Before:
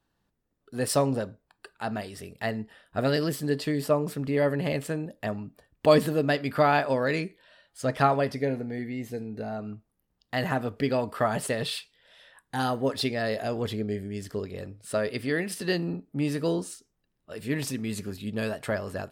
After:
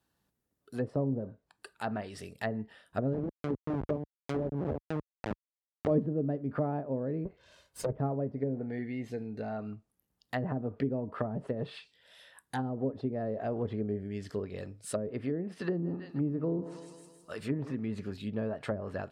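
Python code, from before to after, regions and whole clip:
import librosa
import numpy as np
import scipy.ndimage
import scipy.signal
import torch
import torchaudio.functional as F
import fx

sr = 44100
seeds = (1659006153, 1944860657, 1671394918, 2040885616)

y = fx.chain(x, sr, fx.delta_hold(step_db=-20.5),
    fx.low_shelf(hz=100.0, db=-3.5), at=(3.13, 5.91))
y = fx.chain(y, sr, fx.lower_of_two(delay_ms=1.9),
    fx.low_shelf(hz=340.0, db=7.5), at=(7.25, 7.96))
y = fx.chain(y, sr, fx.peak_eq(hz=1200.0, db=8.0, octaves=0.94),
    fx.echo_feedback(ms=160, feedback_pct=52, wet_db=-15.0), at=(15.61, 17.75))
y = fx.env_lowpass_down(y, sr, base_hz=390.0, full_db=-23.5)
y = scipy.signal.sosfilt(scipy.signal.butter(2, 53.0, 'highpass', fs=sr, output='sos'), y)
y = fx.high_shelf(y, sr, hz=7900.0, db=11.0)
y = y * 10.0 ** (-3.0 / 20.0)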